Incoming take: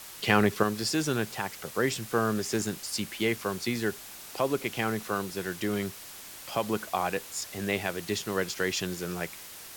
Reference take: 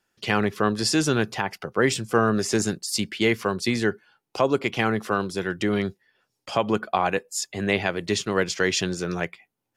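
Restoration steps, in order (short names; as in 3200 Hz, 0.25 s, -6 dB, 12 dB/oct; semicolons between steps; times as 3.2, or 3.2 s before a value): noise print and reduce 23 dB; gain correction +6.5 dB, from 0.63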